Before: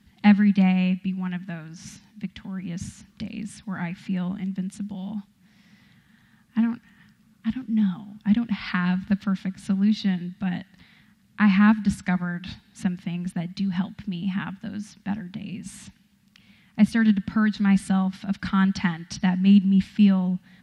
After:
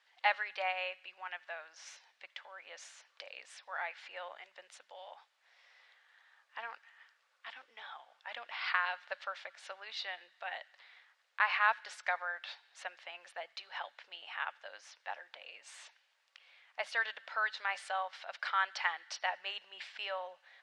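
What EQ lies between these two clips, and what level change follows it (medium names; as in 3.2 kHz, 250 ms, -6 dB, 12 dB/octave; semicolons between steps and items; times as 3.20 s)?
elliptic high-pass 540 Hz, stop band 60 dB; distance through air 94 m; -1.5 dB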